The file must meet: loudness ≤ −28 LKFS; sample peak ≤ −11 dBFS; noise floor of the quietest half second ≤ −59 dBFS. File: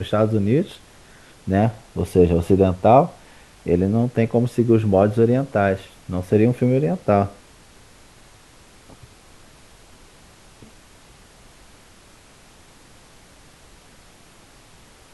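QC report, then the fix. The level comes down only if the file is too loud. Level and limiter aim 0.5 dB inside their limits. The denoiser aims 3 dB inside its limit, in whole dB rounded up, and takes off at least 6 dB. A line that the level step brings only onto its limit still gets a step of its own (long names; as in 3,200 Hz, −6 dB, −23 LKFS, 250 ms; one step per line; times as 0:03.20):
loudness −19.0 LKFS: out of spec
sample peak −2.0 dBFS: out of spec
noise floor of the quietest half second −49 dBFS: out of spec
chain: broadband denoise 6 dB, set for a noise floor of −49 dBFS
level −9.5 dB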